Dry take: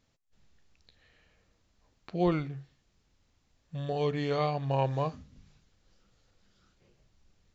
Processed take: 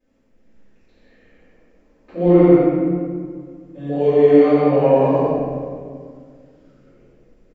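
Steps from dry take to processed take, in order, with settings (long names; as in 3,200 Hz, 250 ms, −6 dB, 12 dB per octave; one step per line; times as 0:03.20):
octave-band graphic EQ 125/250/500/2,000/4,000 Hz −5/+12/+10/+5/−8 dB
loudspeakers that aren't time-aligned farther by 30 metres −2 dB, 51 metres −11 dB, 63 metres −3 dB
convolution reverb RT60 1.9 s, pre-delay 3 ms, DRR −18 dB
level −15.5 dB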